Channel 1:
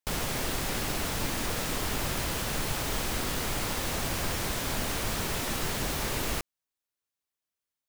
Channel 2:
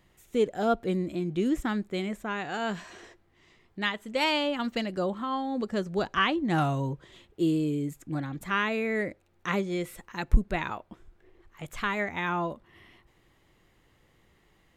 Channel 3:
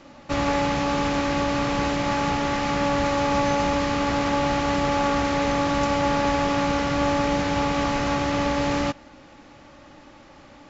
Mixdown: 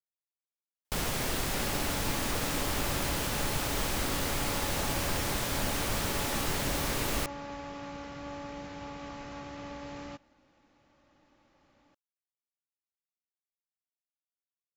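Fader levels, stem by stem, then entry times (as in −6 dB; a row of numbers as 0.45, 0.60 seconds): −0.5 dB, muted, −19.0 dB; 0.85 s, muted, 1.25 s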